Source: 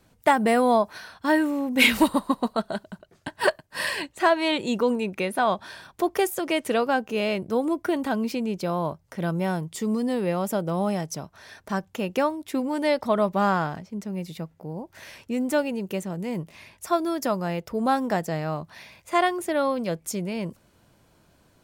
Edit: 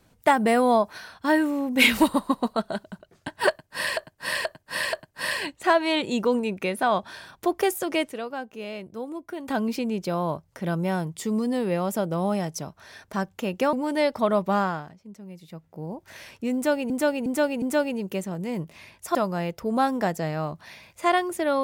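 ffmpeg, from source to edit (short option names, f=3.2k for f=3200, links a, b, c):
-filter_complex "[0:a]asplit=13[a][b][c][d][e][f][g][h][i][j][k][l][m];[a]atrim=end=3.972[n];[b]atrim=start=3.488:end=3.972[o];[c]atrim=start=3.488:end=3.972[p];[d]atrim=start=3.488:end=6.652[q];[e]atrim=start=6.648:end=8.042,asetpts=PTS-STARTPTS,volume=-10dB[r];[f]atrim=start=8.038:end=12.292[s];[g]atrim=start=12.598:end=13.76,asetpts=PTS-STARTPTS,afade=t=out:st=0.772:d=0.39:silence=0.298538[t];[h]atrim=start=13.76:end=14.33,asetpts=PTS-STARTPTS,volume=-10.5dB[u];[i]atrim=start=14.33:end=15.772,asetpts=PTS-STARTPTS,afade=t=in:d=0.39:silence=0.298538[v];[j]atrim=start=15.408:end=15.772[w];[k]atrim=start=15.408:end=15.772[x];[l]atrim=start=15.408:end=16.942[y];[m]atrim=start=17.238[z];[n][o]acrossfade=d=0.004:c1=hsin:c2=hsin[aa];[aa][p]acrossfade=d=0.004:c1=hsin:c2=hsin[ab];[ab][q]acrossfade=d=0.004:c1=hsin:c2=hsin[ac];[ac][r]acrossfade=d=0.004:c1=hsin:c2=hsin[ad];[ad][s]acrossfade=d=0.004:c1=hsin:c2=hsin[ae];[t][u][v]concat=n=3:v=0:a=1[af];[ae][af]acrossfade=d=0.004:c1=hsin:c2=hsin[ag];[ag][w]acrossfade=d=0.004:c1=hsin:c2=hsin[ah];[ah][x]acrossfade=d=0.004:c1=hsin:c2=hsin[ai];[ai][y]acrossfade=d=0.004:c1=hsin:c2=hsin[aj];[aj][z]acrossfade=d=0.004:c1=hsin:c2=hsin"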